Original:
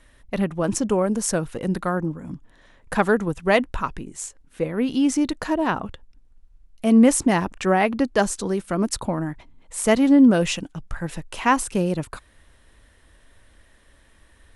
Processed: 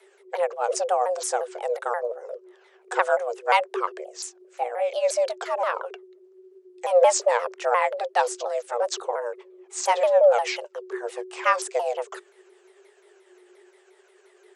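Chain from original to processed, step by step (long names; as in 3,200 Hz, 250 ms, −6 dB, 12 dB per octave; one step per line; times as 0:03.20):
pitch shifter swept by a sawtooth −8 semitones, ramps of 176 ms
tape wow and flutter 18 cents
frequency shifter +360 Hz
level −1.5 dB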